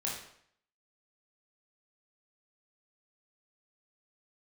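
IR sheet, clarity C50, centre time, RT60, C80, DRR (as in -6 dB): 3.5 dB, 43 ms, 0.65 s, 7.5 dB, -4.5 dB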